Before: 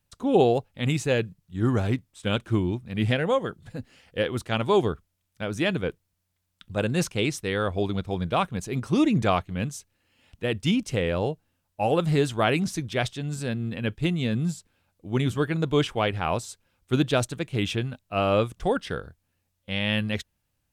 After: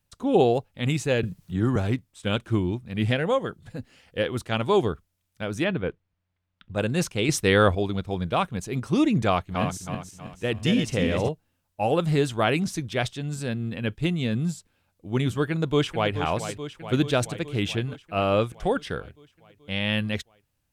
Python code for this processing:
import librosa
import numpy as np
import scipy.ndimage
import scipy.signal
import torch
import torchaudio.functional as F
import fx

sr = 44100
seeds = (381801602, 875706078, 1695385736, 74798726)

y = fx.band_squash(x, sr, depth_pct=70, at=(1.23, 1.76))
y = fx.lowpass(y, sr, hz=2700.0, slope=12, at=(5.64, 6.75))
y = fx.reverse_delay_fb(y, sr, ms=160, feedback_pct=62, wet_db=-4.5, at=(9.31, 11.29))
y = fx.echo_throw(y, sr, start_s=15.5, length_s=0.64, ms=430, feedback_pct=70, wet_db=-10.0)
y = fx.edit(y, sr, fx.clip_gain(start_s=7.29, length_s=0.46, db=8.0), tone=tone)